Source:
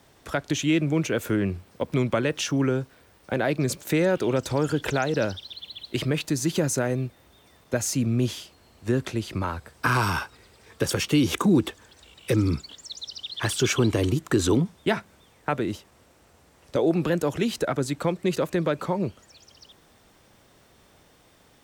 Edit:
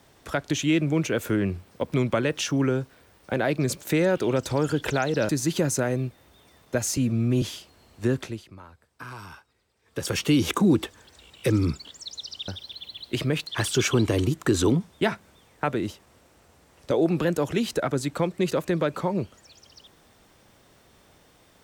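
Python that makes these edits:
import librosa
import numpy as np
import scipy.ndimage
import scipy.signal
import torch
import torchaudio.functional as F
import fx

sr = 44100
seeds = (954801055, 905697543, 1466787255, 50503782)

y = fx.edit(x, sr, fx.move(start_s=5.29, length_s=0.99, to_s=13.32),
    fx.stretch_span(start_s=7.96, length_s=0.3, factor=1.5),
    fx.fade_down_up(start_s=8.97, length_s=2.06, db=-17.5, fade_s=0.35), tone=tone)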